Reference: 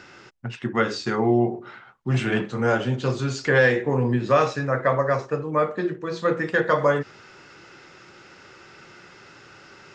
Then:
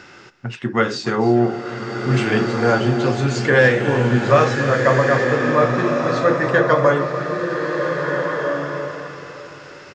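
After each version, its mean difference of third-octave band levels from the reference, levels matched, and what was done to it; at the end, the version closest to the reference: 6.5 dB: echo 0.296 s -15 dB; bloom reverb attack 1.69 s, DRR 2.5 dB; gain +4 dB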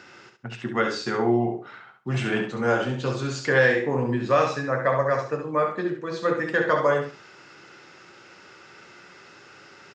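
2.0 dB: HPF 160 Hz 6 dB/oct; on a send: feedback echo 68 ms, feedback 22%, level -6.5 dB; on the sum: gain -1.5 dB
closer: second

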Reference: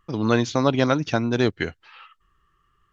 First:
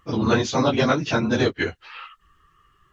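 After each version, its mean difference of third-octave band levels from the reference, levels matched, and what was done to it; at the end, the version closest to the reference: 3.5 dB: phase scrambler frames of 50 ms; low shelf 430 Hz -3 dB; in parallel at +3 dB: compressor, threshold -33 dBFS, peak gain reduction 16 dB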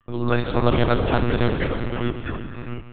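9.0 dB: echoes that change speed 0.348 s, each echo -3 st, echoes 2, each echo -6 dB; non-linear reverb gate 0.42 s flat, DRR 5 dB; monotone LPC vocoder at 8 kHz 120 Hz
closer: first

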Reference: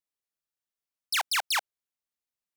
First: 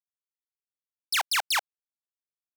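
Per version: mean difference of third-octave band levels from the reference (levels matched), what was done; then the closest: 2.5 dB: bit-crush 8-bit; gain +1.5 dB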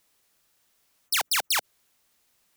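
3.5 dB: spectral compressor 2:1; gain +8 dB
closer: first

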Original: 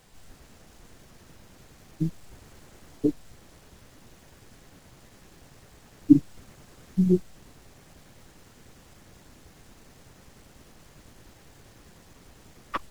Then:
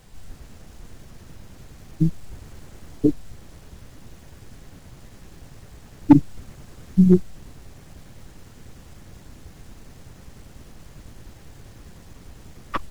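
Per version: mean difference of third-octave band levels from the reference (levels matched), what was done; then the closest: 2.5 dB: low shelf 180 Hz +9.5 dB; overloaded stage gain 6.5 dB; gain +3 dB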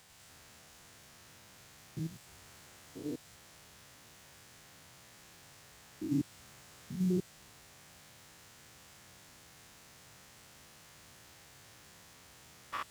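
8.5 dB: stepped spectrum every 0.1 s; HPF 110 Hz 12 dB/oct; bell 280 Hz -11.5 dB 2.7 oct; gain +2.5 dB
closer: first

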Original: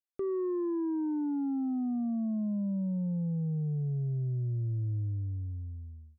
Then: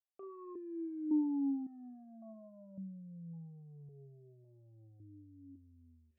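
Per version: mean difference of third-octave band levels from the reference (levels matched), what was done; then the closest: 3.0 dB: reverse; upward compressor, threshold -36 dBFS; reverse; flutter echo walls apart 6.2 m, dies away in 0.22 s; vowel sequencer 1.8 Hz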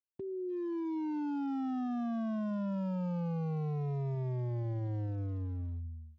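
9.0 dB: inverse Chebyshev low-pass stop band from 720 Hz, stop band 50 dB; hard clip -39 dBFS, distortion -8 dB; gain +5 dB; Speex 34 kbps 16000 Hz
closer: first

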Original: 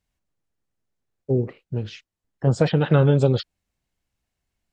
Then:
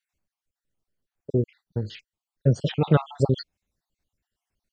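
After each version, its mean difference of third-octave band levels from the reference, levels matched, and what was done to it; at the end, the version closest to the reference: 6.0 dB: random spectral dropouts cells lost 50%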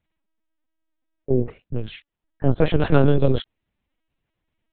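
3.0 dB: LPC vocoder at 8 kHz pitch kept; gain +2 dB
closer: second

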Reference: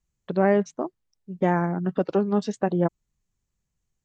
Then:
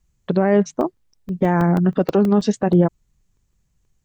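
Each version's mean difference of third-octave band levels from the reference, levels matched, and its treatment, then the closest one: 3.0 dB: low shelf 160 Hz +6 dB; maximiser +14 dB; crackling interface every 0.16 s, samples 64, zero, from 0.81; gain -5.5 dB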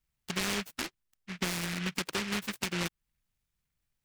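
17.5 dB: high shelf 4800 Hz +9.5 dB; compressor 3:1, threshold -26 dBFS, peak gain reduction 9.5 dB; noise-modulated delay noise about 2000 Hz, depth 0.48 ms; gain -5 dB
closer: first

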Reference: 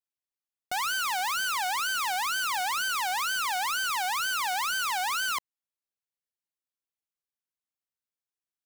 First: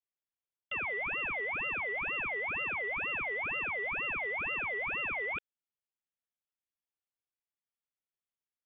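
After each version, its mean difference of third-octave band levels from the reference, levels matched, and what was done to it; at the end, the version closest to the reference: 21.5 dB: inverted band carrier 3500 Hz; gain -5 dB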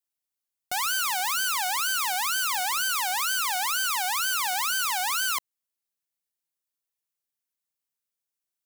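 2.0 dB: high shelf 5500 Hz +8.5 dB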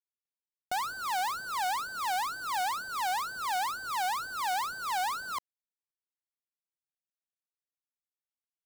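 5.0 dB: median filter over 25 samples; gain +1.5 dB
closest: second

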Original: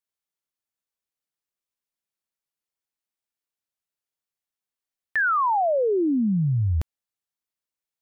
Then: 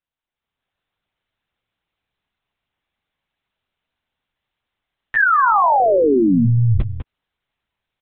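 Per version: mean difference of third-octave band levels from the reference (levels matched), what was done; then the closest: 6.5 dB: limiter -27.5 dBFS, peak gain reduction 9.5 dB; AGC gain up to 11 dB; on a send: echo 0.199 s -8.5 dB; on the sum: monotone LPC vocoder at 8 kHz 120 Hz; gain +5 dB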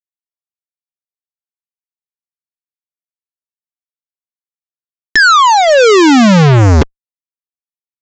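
16.5 dB: EQ curve 110 Hz 0 dB, 280 Hz +14 dB, 420 Hz +13 dB, 680 Hz -26 dB, 1900 Hz -6 dB; fuzz box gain 54 dB, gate -48 dBFS; downsampling 16000 Hz; gain +8 dB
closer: first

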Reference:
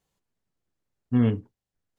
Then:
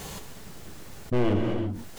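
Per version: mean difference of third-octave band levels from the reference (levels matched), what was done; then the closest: 12.0 dB: one-sided fold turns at -27 dBFS; non-linear reverb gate 0.39 s falling, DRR 7 dB; fast leveller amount 70%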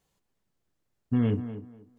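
3.0 dB: limiter -19.5 dBFS, peak gain reduction 7.5 dB; on a send: tape echo 0.242 s, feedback 25%, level -9.5 dB, low-pass 2100 Hz; on the sum: gain +3 dB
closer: second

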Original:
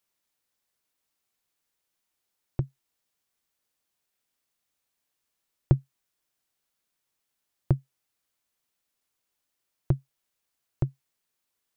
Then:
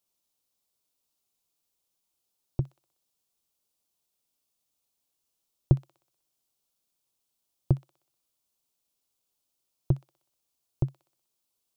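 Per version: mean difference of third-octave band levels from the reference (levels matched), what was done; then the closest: 1.5 dB: bell 1800 Hz -13 dB 0.89 oct; on a send: thin delay 62 ms, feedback 53%, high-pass 1800 Hz, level -5 dB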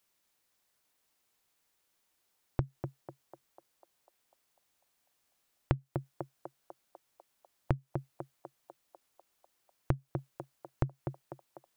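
4.5 dB: narrowing echo 0.248 s, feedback 65%, band-pass 800 Hz, level -4 dB; compressor 6:1, threshold -31 dBFS, peak gain reduction 16 dB; gain +4 dB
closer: first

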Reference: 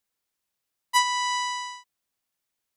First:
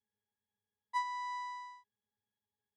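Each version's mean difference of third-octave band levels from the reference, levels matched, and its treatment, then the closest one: 4.5 dB: octave resonator G#, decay 0.13 s; gain +8 dB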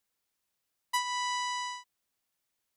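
1.0 dB: compressor 4:1, threshold -30 dBFS, peak gain reduction 11.5 dB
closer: second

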